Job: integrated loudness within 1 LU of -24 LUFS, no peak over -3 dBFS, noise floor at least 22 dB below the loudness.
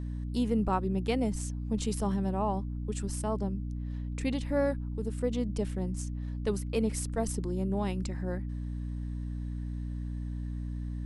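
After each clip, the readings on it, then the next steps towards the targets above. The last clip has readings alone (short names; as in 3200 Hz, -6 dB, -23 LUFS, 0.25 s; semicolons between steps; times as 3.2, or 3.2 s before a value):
hum 60 Hz; harmonics up to 300 Hz; hum level -33 dBFS; loudness -33.0 LUFS; peak -16.0 dBFS; loudness target -24.0 LUFS
-> notches 60/120/180/240/300 Hz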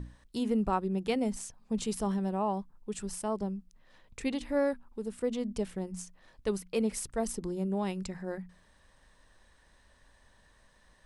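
hum none; loudness -34.0 LUFS; peak -17.5 dBFS; loudness target -24.0 LUFS
-> gain +10 dB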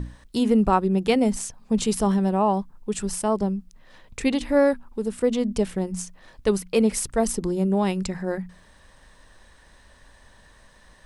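loudness -24.0 LUFS; peak -7.5 dBFS; noise floor -54 dBFS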